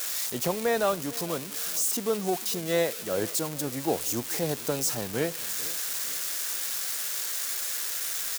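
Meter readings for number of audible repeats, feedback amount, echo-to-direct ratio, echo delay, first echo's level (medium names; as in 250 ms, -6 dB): 3, 41%, -18.5 dB, 452 ms, -19.5 dB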